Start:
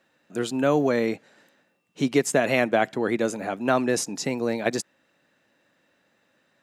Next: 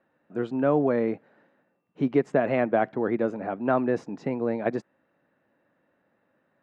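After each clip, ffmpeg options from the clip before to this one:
-af "lowpass=1.4k,volume=-1dB"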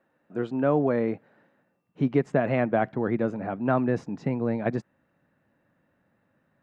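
-af "asubboost=boost=3.5:cutoff=190"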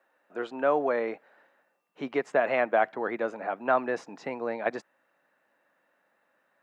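-af "highpass=600,volume=3.5dB"

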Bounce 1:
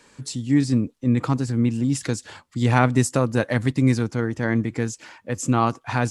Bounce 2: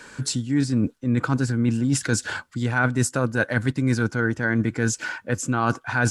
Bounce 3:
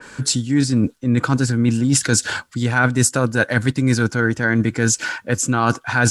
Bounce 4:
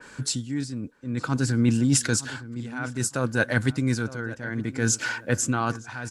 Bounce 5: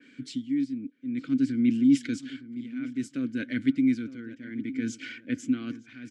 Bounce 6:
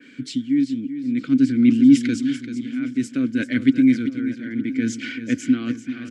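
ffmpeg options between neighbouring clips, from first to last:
-af "equalizer=f=1.5k:w=7.4:g=14.5,areverse,acompressor=threshold=-26dB:ratio=6,areverse,volume=7.5dB"
-af "adynamicequalizer=threshold=0.01:dfrequency=2800:dqfactor=0.7:tfrequency=2800:tqfactor=0.7:attack=5:release=100:ratio=0.375:range=2.5:mode=boostabove:tftype=highshelf,volume=4.5dB"
-filter_complex "[0:a]dynaudnorm=f=110:g=11:m=11.5dB,tremolo=f=0.57:d=0.78,asplit=2[a][b];[b]adelay=912,lowpass=f=2.3k:p=1,volume=-15.5dB,asplit=2[c][d];[d]adelay=912,lowpass=f=2.3k:p=1,volume=0.28,asplit=2[e][f];[f]adelay=912,lowpass=f=2.3k:p=1,volume=0.28[g];[a][c][e][g]amix=inputs=4:normalize=0,volume=-6.5dB"
-filter_complex "[0:a]asplit=3[a][b][c];[a]bandpass=f=270:t=q:w=8,volume=0dB[d];[b]bandpass=f=2.29k:t=q:w=8,volume=-6dB[e];[c]bandpass=f=3.01k:t=q:w=8,volume=-9dB[f];[d][e][f]amix=inputs=3:normalize=0,volume=6dB"
-af "aecho=1:1:388|776:0.282|0.0451,volume=8dB"

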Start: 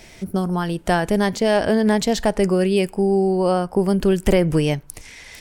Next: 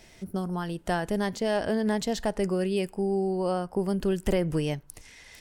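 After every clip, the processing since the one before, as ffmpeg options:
-af "bandreject=f=2.3k:w=17,volume=-9dB"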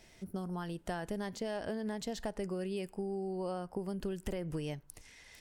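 -af "acompressor=threshold=-27dB:ratio=6,volume=-6.5dB"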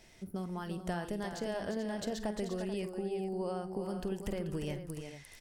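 -af "aecho=1:1:48|350|435:0.178|0.422|0.299"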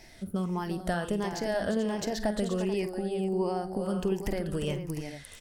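-af "afftfilt=real='re*pow(10,7/40*sin(2*PI*(0.75*log(max(b,1)*sr/1024/100)/log(2)-(-1.4)*(pts-256)/sr)))':imag='im*pow(10,7/40*sin(2*PI*(0.75*log(max(b,1)*sr/1024/100)/log(2)-(-1.4)*(pts-256)/sr)))':win_size=1024:overlap=0.75,volume=6dB"

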